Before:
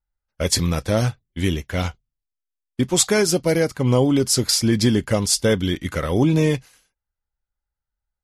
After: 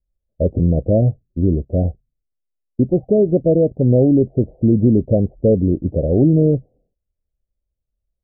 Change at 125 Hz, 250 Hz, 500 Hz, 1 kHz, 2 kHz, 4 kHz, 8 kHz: +5.0 dB, +5.0 dB, +5.0 dB, no reading, under -40 dB, under -40 dB, under -40 dB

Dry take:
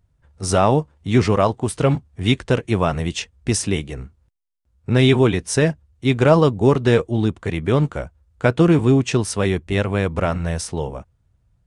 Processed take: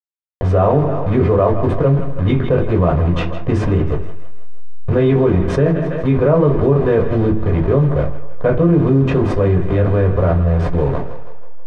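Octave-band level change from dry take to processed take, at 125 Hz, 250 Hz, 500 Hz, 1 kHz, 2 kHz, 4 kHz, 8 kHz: +5.0 dB, +2.5 dB, +4.0 dB, +1.0 dB, -3.5 dB, under -10 dB, under -20 dB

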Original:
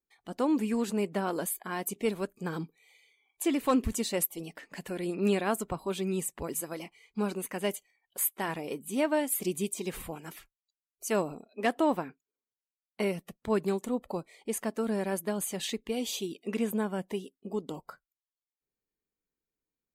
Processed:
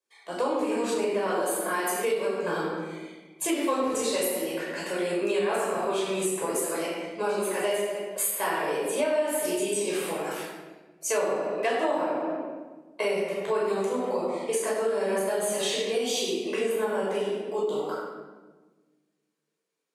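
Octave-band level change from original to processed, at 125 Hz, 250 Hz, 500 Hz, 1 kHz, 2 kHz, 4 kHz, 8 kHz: -4.5 dB, -1.0 dB, +7.0 dB, +6.0 dB, +6.5 dB, +6.5 dB, +4.5 dB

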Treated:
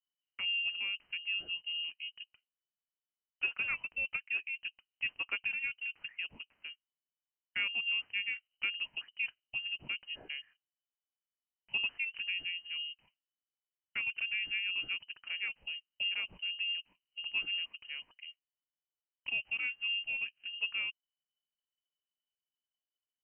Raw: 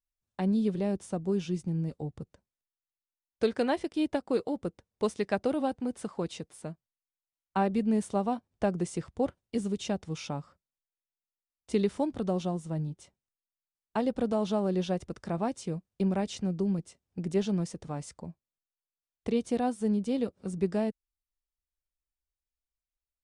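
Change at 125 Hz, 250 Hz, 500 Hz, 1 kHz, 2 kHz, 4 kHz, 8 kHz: under -30 dB, under -35 dB, under -30 dB, -21.0 dB, +12.5 dB, +11.0 dB, under -30 dB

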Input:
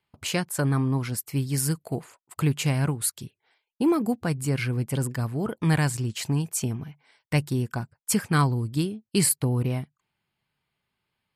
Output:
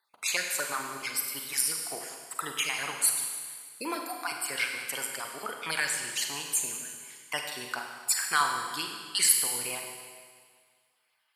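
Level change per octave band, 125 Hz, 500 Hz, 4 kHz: -30.5 dB, -10.5 dB, +3.5 dB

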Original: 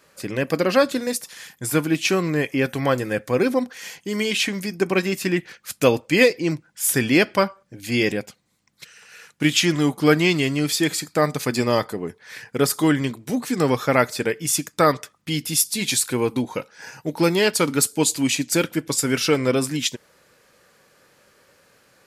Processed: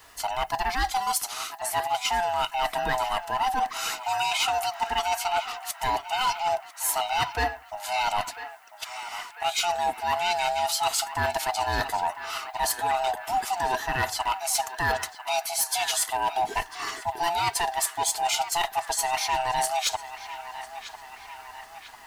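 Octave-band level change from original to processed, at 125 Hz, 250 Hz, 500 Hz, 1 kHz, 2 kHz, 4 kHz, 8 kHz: -15.5 dB, -24.5 dB, -10.5 dB, +5.5 dB, -5.0 dB, -3.0 dB, -4.0 dB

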